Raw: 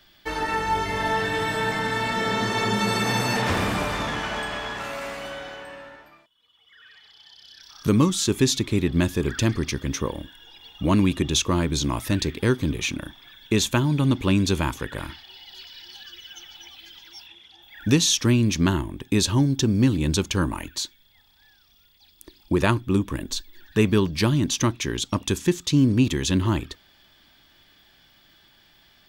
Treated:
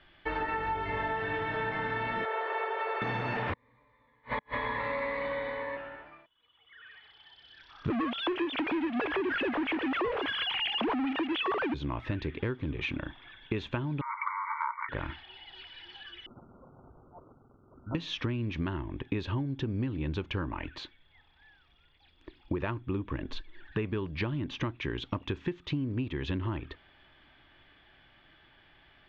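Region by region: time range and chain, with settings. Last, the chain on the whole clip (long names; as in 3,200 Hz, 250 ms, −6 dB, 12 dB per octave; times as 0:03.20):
0:02.25–0:03.02: converter with a step at zero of −30.5 dBFS + Butterworth high-pass 420 Hz 48 dB per octave + head-to-tape spacing loss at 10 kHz 27 dB
0:03.53–0:05.77: EQ curve with evenly spaced ripples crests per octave 1, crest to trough 17 dB + gate with flip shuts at −16 dBFS, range −42 dB
0:07.90–0:11.74: three sine waves on the formant tracks + high-pass filter 330 Hz + power curve on the samples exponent 0.35
0:14.01–0:14.89: leveller curve on the samples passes 5 + linear-phase brick-wall band-pass 870–2,300 Hz + phaser with its sweep stopped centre 1,700 Hz, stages 6
0:16.26–0:17.95: guitar amp tone stack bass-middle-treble 5-5-5 + sample-rate reduction 1,600 Hz + linear-phase brick-wall band-stop 1,600–8,900 Hz
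whole clip: low-pass filter 2,800 Hz 24 dB per octave; parametric band 200 Hz −6 dB 0.53 octaves; downward compressor 10 to 1, threshold −29 dBFS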